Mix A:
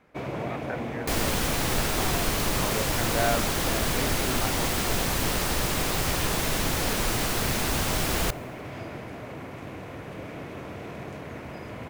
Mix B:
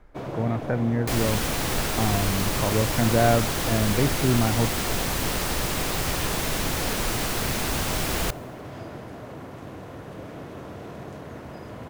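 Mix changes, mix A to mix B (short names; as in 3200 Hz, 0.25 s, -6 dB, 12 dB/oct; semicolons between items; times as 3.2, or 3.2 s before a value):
speech: remove HPF 1100 Hz 6 dB/oct; first sound: add bell 2300 Hz -8.5 dB 0.55 oct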